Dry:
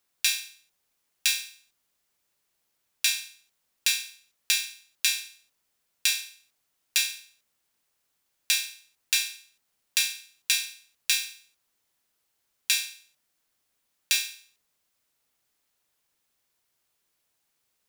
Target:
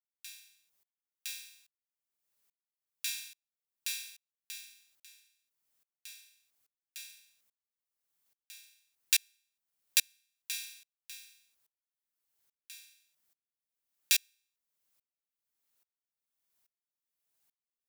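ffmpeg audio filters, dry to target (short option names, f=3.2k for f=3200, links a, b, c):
-af "highshelf=f=9.6k:g=8.5,aeval=exprs='val(0)*pow(10,-35*if(lt(mod(-1.2*n/s,1),2*abs(-1.2)/1000),1-mod(-1.2*n/s,1)/(2*abs(-1.2)/1000),(mod(-1.2*n/s,1)-2*abs(-1.2)/1000)/(1-2*abs(-1.2)/1000))/20)':c=same,volume=-3dB"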